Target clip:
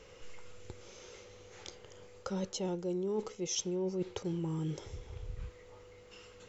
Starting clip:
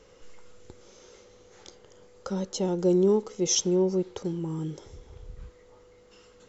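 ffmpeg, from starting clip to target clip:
ffmpeg -i in.wav -af "equalizer=frequency=100:width_type=o:width=0.67:gain=5,equalizer=frequency=250:width_type=o:width=0.67:gain=-4,equalizer=frequency=2500:width_type=o:width=0.67:gain=6,areverse,acompressor=threshold=-32dB:ratio=12,areverse" out.wav

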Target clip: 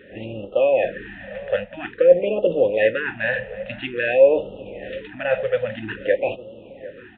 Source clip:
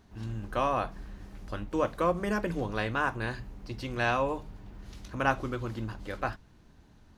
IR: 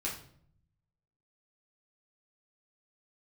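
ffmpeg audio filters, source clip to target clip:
-filter_complex "[0:a]areverse,acompressor=threshold=-36dB:ratio=8,areverse,apsyclip=32dB,asplit=2[link_01][link_02];[link_02]asetrate=58866,aresample=44100,atempo=0.749154,volume=-17dB[link_03];[link_01][link_03]amix=inputs=2:normalize=0,asplit=3[link_04][link_05][link_06];[link_04]bandpass=frequency=530:width_type=q:width=8,volume=0dB[link_07];[link_05]bandpass=frequency=1840:width_type=q:width=8,volume=-6dB[link_08];[link_06]bandpass=frequency=2480:width_type=q:width=8,volume=-9dB[link_09];[link_07][link_08][link_09]amix=inputs=3:normalize=0,asplit=2[link_10][link_11];[link_11]adelay=750,lowpass=frequency=1400:poles=1,volume=-16.5dB,asplit=2[link_12][link_13];[link_13]adelay=750,lowpass=frequency=1400:poles=1,volume=0.51,asplit=2[link_14][link_15];[link_15]adelay=750,lowpass=frequency=1400:poles=1,volume=0.51,asplit=2[link_16][link_17];[link_17]adelay=750,lowpass=frequency=1400:poles=1,volume=0.51,asplit=2[link_18][link_19];[link_19]adelay=750,lowpass=frequency=1400:poles=1,volume=0.51[link_20];[link_10][link_12][link_14][link_16][link_18][link_20]amix=inputs=6:normalize=0,aresample=8000,aresample=44100,afftfilt=real='re*(1-between(b*sr/1024,300*pow(1900/300,0.5+0.5*sin(2*PI*0.5*pts/sr))/1.41,300*pow(1900/300,0.5+0.5*sin(2*PI*0.5*pts/sr))*1.41))':imag='im*(1-between(b*sr/1024,300*pow(1900/300,0.5+0.5*sin(2*PI*0.5*pts/sr))/1.41,300*pow(1900/300,0.5+0.5*sin(2*PI*0.5*pts/sr))*1.41))':win_size=1024:overlap=0.75"

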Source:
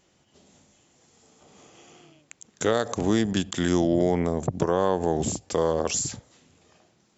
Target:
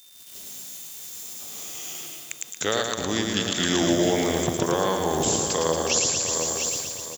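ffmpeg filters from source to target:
ffmpeg -i in.wav -filter_complex "[0:a]acrusher=bits=9:mix=0:aa=0.000001,asplit=2[link_01][link_02];[link_02]aecho=0:1:110|231|364.1|510.5|671.6:0.631|0.398|0.251|0.158|0.1[link_03];[link_01][link_03]amix=inputs=2:normalize=0,acrossover=split=4700[link_04][link_05];[link_05]acompressor=threshold=-46dB:ratio=4:attack=1:release=60[link_06];[link_04][link_06]amix=inputs=2:normalize=0,crystalizer=i=9:c=0,asplit=2[link_07][link_08];[link_08]aecho=0:1:705|1410|2115:0.282|0.0648|0.0149[link_09];[link_07][link_09]amix=inputs=2:normalize=0,dynaudnorm=framelen=130:gausssize=3:maxgain=7.5dB,aeval=exprs='val(0)+0.00501*sin(2*PI*3600*n/s)':channel_layout=same,volume=-7dB" out.wav

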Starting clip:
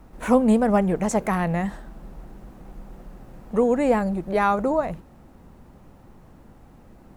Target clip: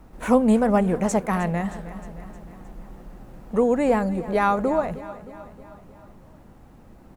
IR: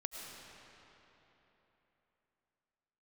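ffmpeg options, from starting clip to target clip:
-filter_complex "[0:a]aecho=1:1:311|622|933|1244|1555:0.158|0.0903|0.0515|0.0294|0.0167,asplit=3[link_01][link_02][link_03];[link_01]afade=type=out:start_time=1.16:duration=0.02[link_04];[link_02]agate=range=-33dB:threshold=-21dB:ratio=3:detection=peak,afade=type=in:start_time=1.16:duration=0.02,afade=type=out:start_time=1.68:duration=0.02[link_05];[link_03]afade=type=in:start_time=1.68:duration=0.02[link_06];[link_04][link_05][link_06]amix=inputs=3:normalize=0"

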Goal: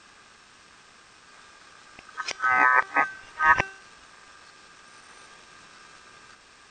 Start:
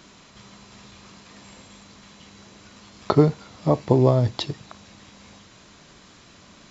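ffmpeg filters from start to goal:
ffmpeg -i in.wav -af "areverse,aeval=exprs='val(0)*sin(2*PI*1400*n/s)':channel_layout=same,bandreject=frequency=386.8:width_type=h:width=4,bandreject=frequency=773.6:width_type=h:width=4,bandreject=frequency=1160.4:width_type=h:width=4,bandreject=frequency=1547.2:width_type=h:width=4,bandreject=frequency=1934:width_type=h:width=4,bandreject=frequency=2320.8:width_type=h:width=4,bandreject=frequency=2707.6:width_type=h:width=4,bandreject=frequency=3094.4:width_type=h:width=4,bandreject=frequency=3481.2:width_type=h:width=4,bandreject=frequency=3868:width_type=h:width=4,bandreject=frequency=4254.8:width_type=h:width=4,bandreject=frequency=4641.6:width_type=h:width=4,bandreject=frequency=5028.4:width_type=h:width=4,bandreject=frequency=5415.2:width_type=h:width=4,bandreject=frequency=5802:width_type=h:width=4,bandreject=frequency=6188.8:width_type=h:width=4,bandreject=frequency=6575.6:width_type=h:width=4,bandreject=frequency=6962.4:width_type=h:width=4,bandreject=frequency=7349.2:width_type=h:width=4,bandreject=frequency=7736:width_type=h:width=4,bandreject=frequency=8122.8:width_type=h:width=4,bandreject=frequency=8509.6:width_type=h:width=4,bandreject=frequency=8896.4:width_type=h:width=4,bandreject=frequency=9283.2:width_type=h:width=4,bandreject=frequency=9670:width_type=h:width=4,bandreject=frequency=10056.8:width_type=h:width=4,bandreject=frequency=10443.6:width_type=h:width=4,bandreject=frequency=10830.4:width_type=h:width=4,bandreject=frequency=11217.2:width_type=h:width=4,bandreject=frequency=11604:width_type=h:width=4,bandreject=frequency=11990.8:width_type=h:width=4,bandreject=frequency=12377.6:width_type=h:width=4,bandreject=frequency=12764.4:width_type=h:width=4,bandreject=frequency=13151.2:width_type=h:width=4,bandreject=frequency=13538:width_type=h:width=4" out.wav

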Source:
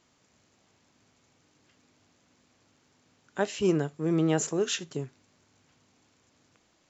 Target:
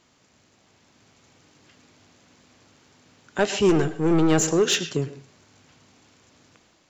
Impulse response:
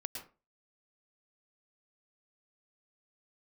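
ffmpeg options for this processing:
-filter_complex "[0:a]asettb=1/sr,asplit=3[link_01][link_02][link_03];[link_01]atrim=end=3.694[link_04];[link_02]atrim=start=3.69:end=4.32,asetpts=PTS-STARTPTS,afade=type=in:duration=0.004:curve=qsin,afade=type=out:start_time=0.626:duration=0.004:curve=qsin,aeval=exprs='0.211*(cos(1*acos(clip(val(0)/0.211,-1,1)))-cos(1*PI/2))+0.0422*(cos(4*acos(clip(val(0)/0.211,-1,1)))-cos(4*PI/2))':channel_layout=same[link_05];[link_03]atrim=start=4.316[link_06];[link_04][link_05]acrossfade=duration=0.004:curve1=hsin:curve2=qsin[link_07];[link_07][link_06]acrossfade=duration=0.004:curve1=qsin:curve2=hsin,asplit=2[link_08][link_09];[link_09]aemphasis=mode=production:type=75fm[link_10];[1:a]atrim=start_sample=2205,lowpass=4200[link_11];[link_10][link_11]afir=irnorm=-1:irlink=0,volume=-8dB[link_12];[link_08][link_12]amix=inputs=2:normalize=0,asoftclip=type=tanh:threshold=-19dB,dynaudnorm=framelen=650:gausssize=3:maxgain=4dB,volume=3.5dB"

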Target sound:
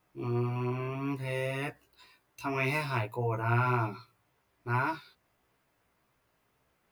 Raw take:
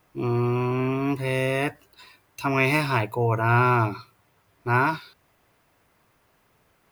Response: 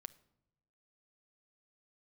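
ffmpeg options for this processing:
-af "flanger=delay=15:depth=2.4:speed=1.8,volume=-6dB"

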